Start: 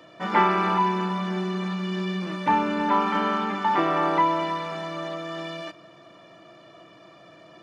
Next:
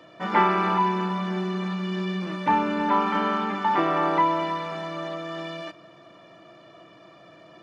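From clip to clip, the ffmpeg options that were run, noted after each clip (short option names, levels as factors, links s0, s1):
-af "highshelf=f=5700:g=-5"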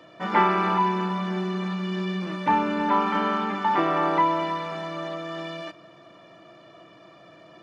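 -af anull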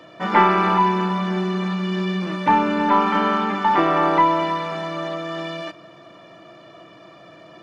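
-af "aeval=exprs='0.473*(cos(1*acos(clip(val(0)/0.473,-1,1)))-cos(1*PI/2))+0.00596*(cos(4*acos(clip(val(0)/0.473,-1,1)))-cos(4*PI/2))':c=same,volume=1.78"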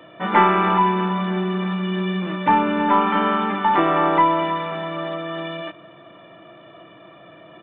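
-af "aresample=8000,aresample=44100"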